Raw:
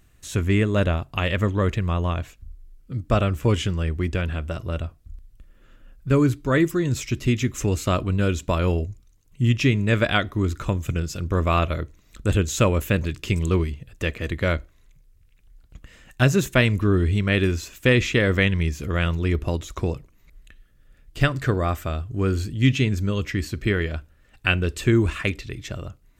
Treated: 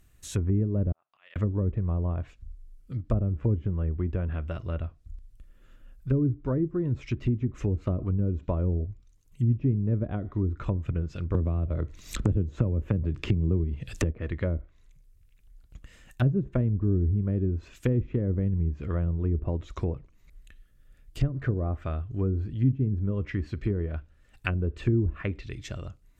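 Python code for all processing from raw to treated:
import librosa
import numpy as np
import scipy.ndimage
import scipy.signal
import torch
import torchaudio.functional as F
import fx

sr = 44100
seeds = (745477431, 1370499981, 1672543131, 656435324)

y = fx.chain(x, sr, fx.highpass(hz=1300.0, slope=12),
    fx.spacing_loss(db_at_10k=26),
    fx.auto_swell(attack_ms=512.0), at=(0.92, 1.36))
y = fx.chain(y, sr, fx.high_shelf(hz=3300.0, db=12.0),
    fx.band_squash(depth_pct=100), at=(11.34, 14.13))
y = fx.low_shelf(y, sr, hz=110.0, db=4.5)
y = fx.env_lowpass_down(y, sr, base_hz=350.0, full_db=-15.0)
y = fx.high_shelf(y, sr, hz=9200.0, db=7.5)
y = y * librosa.db_to_amplitude(-6.0)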